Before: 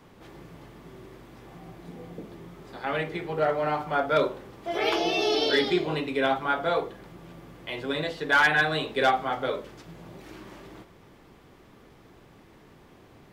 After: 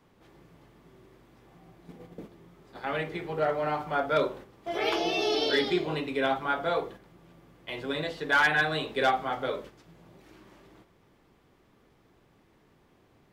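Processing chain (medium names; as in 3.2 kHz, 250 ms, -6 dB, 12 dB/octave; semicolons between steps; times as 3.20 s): gate -41 dBFS, range -7 dB; trim -2.5 dB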